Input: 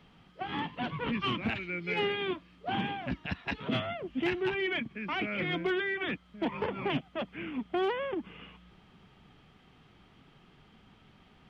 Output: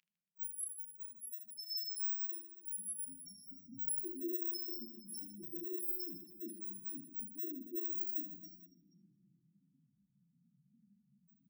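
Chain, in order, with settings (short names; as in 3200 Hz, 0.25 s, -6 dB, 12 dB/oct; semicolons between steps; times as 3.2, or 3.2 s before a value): FFT order left unsorted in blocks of 64 samples; bell 91 Hz -2.5 dB 1.5 oct; reverse; compressor 4:1, threshold -44 dBFS, peak gain reduction 14.5 dB; reverse; loudest bins only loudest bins 1; high-pass sweep 2600 Hz -> 510 Hz, 0.77–3.52; reverse bouncing-ball echo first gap 30 ms, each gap 1.6×, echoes 5; shoebox room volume 2800 m³, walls mixed, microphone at 0.6 m; gain +16 dB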